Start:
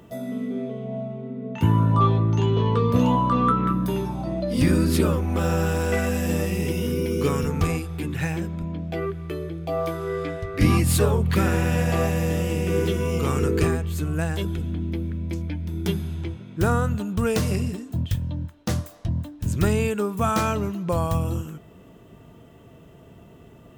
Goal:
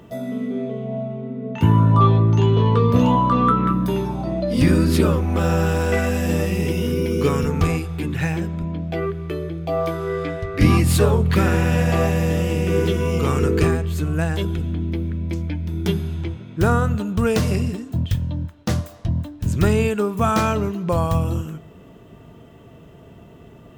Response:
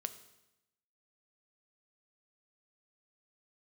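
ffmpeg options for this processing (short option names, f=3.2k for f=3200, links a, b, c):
-filter_complex "[0:a]asplit=2[a][b];[1:a]atrim=start_sample=2205,lowpass=7.2k[c];[b][c]afir=irnorm=-1:irlink=0,volume=-4dB[d];[a][d]amix=inputs=2:normalize=0"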